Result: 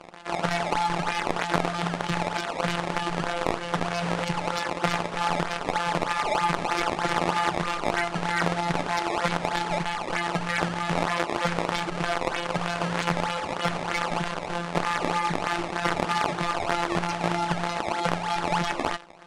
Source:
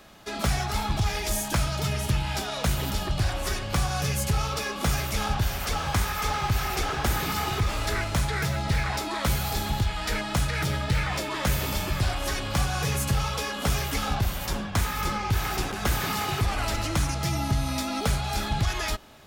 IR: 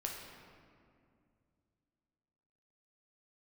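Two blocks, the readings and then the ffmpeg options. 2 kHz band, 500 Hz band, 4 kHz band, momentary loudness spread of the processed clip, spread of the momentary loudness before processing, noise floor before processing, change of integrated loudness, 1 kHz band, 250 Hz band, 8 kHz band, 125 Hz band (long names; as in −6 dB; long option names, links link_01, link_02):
+2.5 dB, +5.0 dB, −1.5 dB, 3 LU, 2 LU, −33 dBFS, +0.5 dB, +5.0 dB, +1.5 dB, −7.0 dB, −7.0 dB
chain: -filter_complex "[0:a]afftfilt=real='hypot(re,im)*cos(PI*b)':imag='0':win_size=1024:overlap=0.75,acrusher=samples=17:mix=1:aa=0.000001:lfo=1:lforange=27.2:lforate=3.2,aresample=22050,aresample=44100,asplit=2[link_01][link_02];[link_02]highpass=frequency=720:poles=1,volume=16dB,asoftclip=type=tanh:threshold=-7dB[link_03];[link_01][link_03]amix=inputs=2:normalize=0,lowpass=frequency=2300:poles=1,volume=-6dB,volume=1.5dB"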